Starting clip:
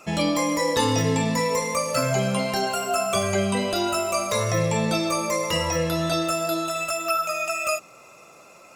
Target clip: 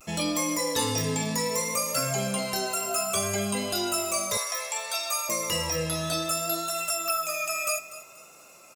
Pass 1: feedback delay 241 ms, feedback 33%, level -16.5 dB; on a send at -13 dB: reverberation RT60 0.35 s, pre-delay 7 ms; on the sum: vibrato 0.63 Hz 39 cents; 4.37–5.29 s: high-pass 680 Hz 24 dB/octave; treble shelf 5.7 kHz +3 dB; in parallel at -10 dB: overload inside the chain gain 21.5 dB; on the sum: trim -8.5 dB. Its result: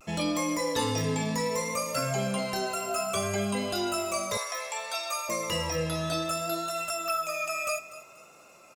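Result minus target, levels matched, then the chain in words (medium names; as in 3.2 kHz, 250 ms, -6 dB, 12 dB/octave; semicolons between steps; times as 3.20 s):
8 kHz band -4.5 dB
feedback delay 241 ms, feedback 33%, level -16.5 dB; on a send at -13 dB: reverberation RT60 0.35 s, pre-delay 7 ms; on the sum: vibrato 0.63 Hz 39 cents; 4.37–5.29 s: high-pass 680 Hz 24 dB/octave; treble shelf 5.7 kHz +14.5 dB; in parallel at -10 dB: overload inside the chain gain 21.5 dB; on the sum: trim -8.5 dB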